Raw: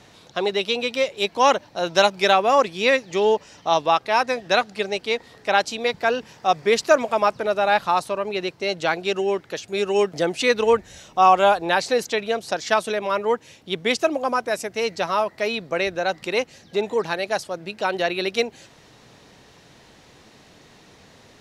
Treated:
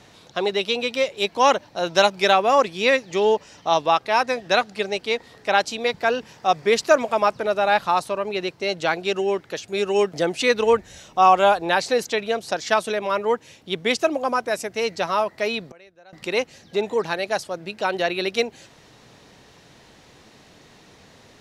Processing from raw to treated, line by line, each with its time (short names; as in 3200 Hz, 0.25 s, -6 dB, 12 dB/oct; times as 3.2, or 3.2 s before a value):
15.68–16.13 flipped gate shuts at -30 dBFS, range -26 dB